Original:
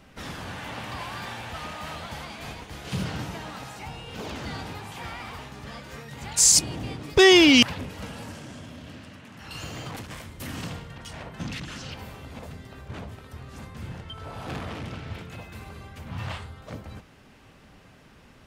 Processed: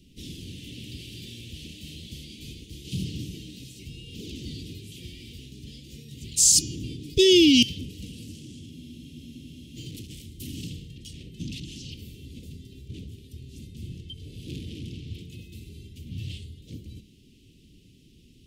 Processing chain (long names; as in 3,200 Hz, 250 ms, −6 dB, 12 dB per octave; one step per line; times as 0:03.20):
elliptic band-stop filter 360–3,000 Hz, stop band 60 dB
hum removal 206.7 Hz, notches 35
frozen spectrum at 0:08.73, 1.04 s